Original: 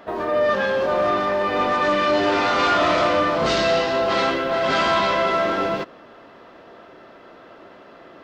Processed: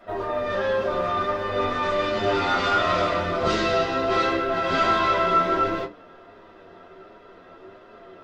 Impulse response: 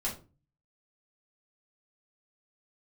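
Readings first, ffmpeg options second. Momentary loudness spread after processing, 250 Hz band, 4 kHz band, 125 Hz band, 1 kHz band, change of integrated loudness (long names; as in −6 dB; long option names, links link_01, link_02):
5 LU, −3.5 dB, −4.5 dB, +0.5 dB, −2.5 dB, −3.0 dB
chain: -filter_complex "[0:a]flanger=delay=9.4:depth=1.8:regen=40:speed=1.4:shape=sinusoidal[link_01];[1:a]atrim=start_sample=2205,afade=type=out:start_time=0.22:duration=0.01,atrim=end_sample=10143,asetrate=79380,aresample=44100[link_02];[link_01][link_02]afir=irnorm=-1:irlink=0,volume=1dB"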